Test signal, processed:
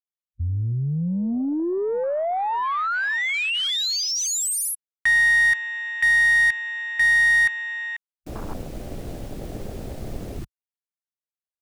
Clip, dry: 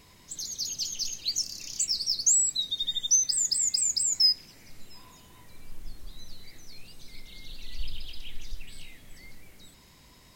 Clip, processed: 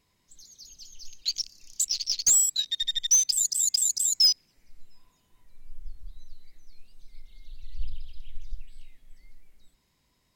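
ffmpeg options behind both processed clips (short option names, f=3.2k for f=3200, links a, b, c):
-af "afwtdn=0.0282,aeval=exprs='0.266*(cos(1*acos(clip(val(0)/0.266,-1,1)))-cos(1*PI/2))+0.0133*(cos(2*acos(clip(val(0)/0.266,-1,1)))-cos(2*PI/2))+0.0596*(cos(5*acos(clip(val(0)/0.266,-1,1)))-cos(5*PI/2))+0.0376*(cos(7*acos(clip(val(0)/0.266,-1,1)))-cos(7*PI/2))':c=same"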